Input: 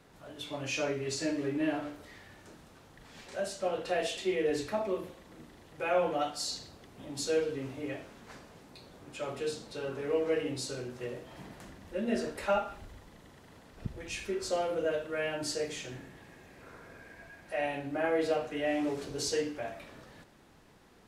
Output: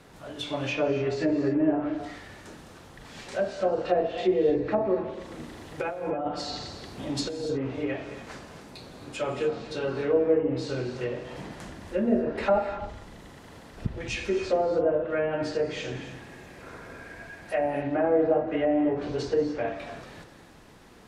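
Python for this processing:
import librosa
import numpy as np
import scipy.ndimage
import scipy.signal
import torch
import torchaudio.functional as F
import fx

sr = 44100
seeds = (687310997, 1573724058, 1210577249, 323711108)

y = fx.env_lowpass_down(x, sr, base_hz=810.0, full_db=-28.0)
y = fx.over_compress(y, sr, threshold_db=-37.0, ratio=-1.0, at=(5.19, 7.55), fade=0.02)
y = fx.rev_gated(y, sr, seeds[0], gate_ms=310, shape='rising', drr_db=9.0)
y = F.gain(torch.from_numpy(y), 7.5).numpy()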